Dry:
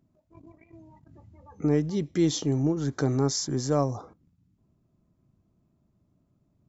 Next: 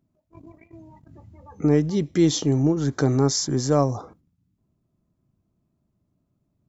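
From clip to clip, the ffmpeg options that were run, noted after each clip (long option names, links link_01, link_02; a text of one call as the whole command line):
ffmpeg -i in.wav -af "agate=range=-8dB:threshold=-57dB:ratio=16:detection=peak,volume=5dB" out.wav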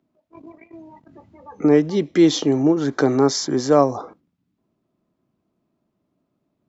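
ffmpeg -i in.wav -filter_complex "[0:a]acrossover=split=220 4800:gain=0.126 1 0.224[link_01][link_02][link_03];[link_01][link_02][link_03]amix=inputs=3:normalize=0,volume=6.5dB" out.wav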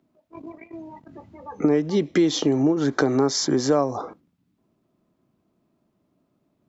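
ffmpeg -i in.wav -af "acompressor=threshold=-20dB:ratio=4,volume=3dB" out.wav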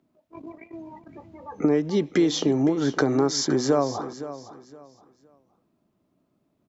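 ffmpeg -i in.wav -af "aecho=1:1:515|1030|1545:0.2|0.0519|0.0135,volume=-1.5dB" out.wav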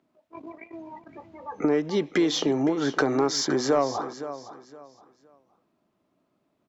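ffmpeg -i in.wav -filter_complex "[0:a]asplit=2[link_01][link_02];[link_02]highpass=frequency=720:poles=1,volume=10dB,asoftclip=type=tanh:threshold=-8.5dB[link_03];[link_01][link_03]amix=inputs=2:normalize=0,lowpass=frequency=3700:poles=1,volume=-6dB,volume=-1.5dB" out.wav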